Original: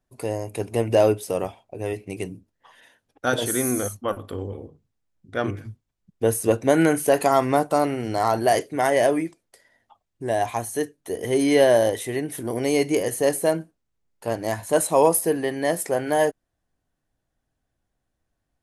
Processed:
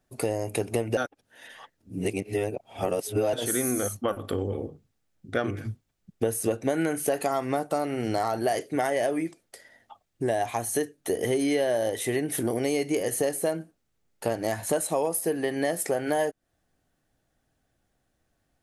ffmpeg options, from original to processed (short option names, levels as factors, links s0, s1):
-filter_complex "[0:a]asplit=3[s0][s1][s2];[s0]atrim=end=0.972[s3];[s1]atrim=start=0.968:end=3.332,asetpts=PTS-STARTPTS,areverse[s4];[s2]atrim=start=3.328[s5];[s3][s4]acrossfade=d=0.004:c1=hsin:c2=hsin[s6];[s6][s5]acrossfade=d=0.004:c1=hsin:c2=hsin,lowshelf=f=85:g=-6.5,acompressor=threshold=0.0316:ratio=6,bandreject=f=1000:w=8.5,volume=2.11"